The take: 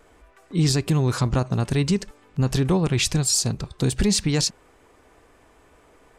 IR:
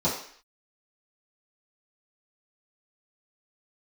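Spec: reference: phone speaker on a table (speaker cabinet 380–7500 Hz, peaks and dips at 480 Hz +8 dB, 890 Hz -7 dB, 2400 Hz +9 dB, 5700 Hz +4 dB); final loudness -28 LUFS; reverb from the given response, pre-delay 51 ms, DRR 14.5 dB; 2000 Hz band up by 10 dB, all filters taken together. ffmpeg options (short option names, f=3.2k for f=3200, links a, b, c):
-filter_complex "[0:a]equalizer=f=2k:t=o:g=6.5,asplit=2[a][b];[1:a]atrim=start_sample=2205,adelay=51[c];[b][c]afir=irnorm=-1:irlink=0,volume=-26.5dB[d];[a][d]amix=inputs=2:normalize=0,highpass=f=380:w=0.5412,highpass=f=380:w=1.3066,equalizer=f=480:t=q:w=4:g=8,equalizer=f=890:t=q:w=4:g=-7,equalizer=f=2.4k:t=q:w=4:g=9,equalizer=f=5.7k:t=q:w=4:g=4,lowpass=f=7.5k:w=0.5412,lowpass=f=7.5k:w=1.3066,volume=-5dB"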